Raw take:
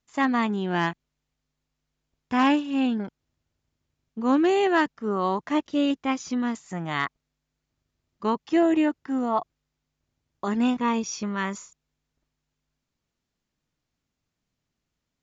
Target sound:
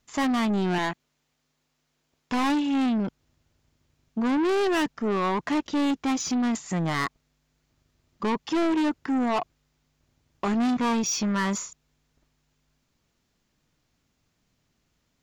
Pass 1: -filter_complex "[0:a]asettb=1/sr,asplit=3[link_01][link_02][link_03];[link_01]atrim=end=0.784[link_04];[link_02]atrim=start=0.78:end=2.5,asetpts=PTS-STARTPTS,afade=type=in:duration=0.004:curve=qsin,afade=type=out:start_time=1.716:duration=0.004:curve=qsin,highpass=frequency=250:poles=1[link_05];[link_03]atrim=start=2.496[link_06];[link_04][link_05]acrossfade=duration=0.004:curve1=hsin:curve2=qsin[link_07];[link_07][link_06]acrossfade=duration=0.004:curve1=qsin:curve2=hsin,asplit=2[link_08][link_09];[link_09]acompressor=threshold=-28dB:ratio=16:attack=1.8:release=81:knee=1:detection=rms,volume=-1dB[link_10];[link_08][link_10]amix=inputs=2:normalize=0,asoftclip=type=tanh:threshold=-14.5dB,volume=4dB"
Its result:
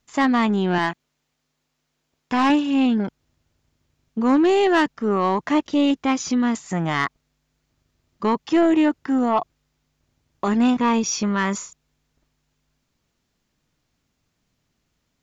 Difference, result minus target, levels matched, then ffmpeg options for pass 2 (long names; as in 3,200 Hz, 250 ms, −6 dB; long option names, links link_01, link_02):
soft clipping: distortion −11 dB
-filter_complex "[0:a]asettb=1/sr,asplit=3[link_01][link_02][link_03];[link_01]atrim=end=0.784[link_04];[link_02]atrim=start=0.78:end=2.5,asetpts=PTS-STARTPTS,afade=type=in:duration=0.004:curve=qsin,afade=type=out:start_time=1.716:duration=0.004:curve=qsin,highpass=frequency=250:poles=1[link_05];[link_03]atrim=start=2.496[link_06];[link_04][link_05]acrossfade=duration=0.004:curve1=hsin:curve2=qsin[link_07];[link_07][link_06]acrossfade=duration=0.004:curve1=qsin:curve2=hsin,asplit=2[link_08][link_09];[link_09]acompressor=threshold=-28dB:ratio=16:attack=1.8:release=81:knee=1:detection=rms,volume=-1dB[link_10];[link_08][link_10]amix=inputs=2:normalize=0,asoftclip=type=tanh:threshold=-25.5dB,volume=4dB"